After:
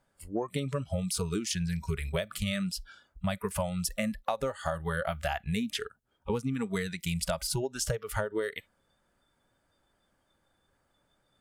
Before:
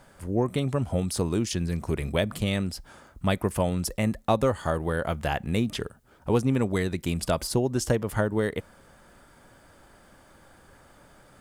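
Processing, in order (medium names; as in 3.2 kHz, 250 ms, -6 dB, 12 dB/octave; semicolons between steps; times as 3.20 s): spectral noise reduction 21 dB; compression 12:1, threshold -29 dBFS, peak gain reduction 11.5 dB; trim +2 dB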